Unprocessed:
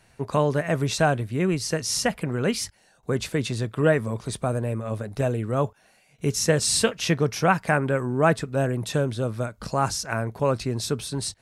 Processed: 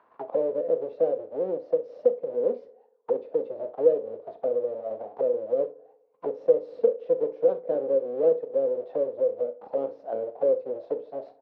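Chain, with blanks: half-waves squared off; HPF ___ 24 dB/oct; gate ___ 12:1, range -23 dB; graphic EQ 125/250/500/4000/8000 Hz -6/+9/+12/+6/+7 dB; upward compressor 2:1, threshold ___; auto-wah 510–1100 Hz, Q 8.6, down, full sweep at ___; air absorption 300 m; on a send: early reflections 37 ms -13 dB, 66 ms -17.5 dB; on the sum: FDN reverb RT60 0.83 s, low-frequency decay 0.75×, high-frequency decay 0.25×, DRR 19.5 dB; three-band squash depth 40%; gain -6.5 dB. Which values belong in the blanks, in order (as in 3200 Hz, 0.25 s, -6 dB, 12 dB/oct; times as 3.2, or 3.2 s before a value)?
58 Hz, -49 dBFS, -21 dBFS, -11.5 dBFS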